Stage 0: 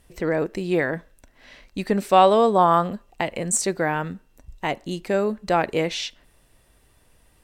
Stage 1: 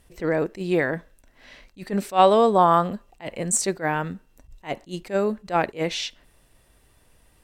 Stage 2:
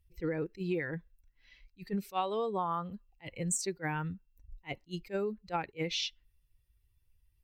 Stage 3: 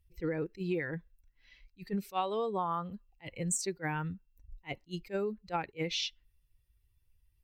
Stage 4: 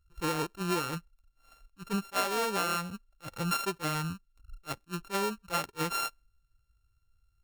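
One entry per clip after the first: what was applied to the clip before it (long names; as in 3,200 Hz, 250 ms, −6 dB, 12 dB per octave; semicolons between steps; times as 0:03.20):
level that may rise only so fast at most 290 dB per second
spectral dynamics exaggerated over time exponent 1.5; thirty-one-band graphic EQ 250 Hz −11 dB, 630 Hz −11 dB, 1,600 Hz −6 dB, 10,000 Hz −6 dB; downward compressor 8 to 1, threshold −30 dBFS, peak gain reduction 15.5 dB
no processing that can be heard
samples sorted by size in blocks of 32 samples; in parallel at −9.5 dB: slack as between gear wheels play −47.5 dBFS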